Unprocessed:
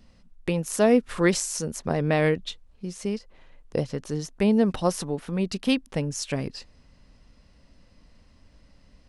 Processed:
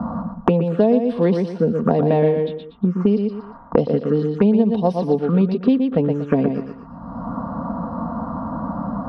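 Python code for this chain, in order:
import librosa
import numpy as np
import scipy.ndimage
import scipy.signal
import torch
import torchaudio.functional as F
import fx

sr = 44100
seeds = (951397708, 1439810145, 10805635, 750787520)

p1 = scipy.signal.sosfilt(scipy.signal.butter(2, 140.0, 'highpass', fs=sr, output='sos'), x)
p2 = fx.env_phaser(p1, sr, low_hz=400.0, high_hz=1300.0, full_db=-24.5)
p3 = scipy.signal.sosfilt(scipy.signal.butter(2, 4100.0, 'lowpass', fs=sr, output='sos'), p2)
p4 = p3 + 0.44 * np.pad(p3, (int(4.3 * sr / 1000.0), 0))[:len(p3)]
p5 = fx.env_lowpass(p4, sr, base_hz=920.0, full_db=-20.0)
p6 = fx.rider(p5, sr, range_db=3, speed_s=0.5)
p7 = p5 + F.gain(torch.from_numpy(p6), 0.5).numpy()
p8 = fx.high_shelf_res(p7, sr, hz=1600.0, db=-8.5, q=3.0)
p9 = p8 + fx.echo_feedback(p8, sr, ms=118, feedback_pct=23, wet_db=-6.5, dry=0)
p10 = fx.band_squash(p9, sr, depth_pct=100)
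y = F.gain(torch.from_numpy(p10), 1.5).numpy()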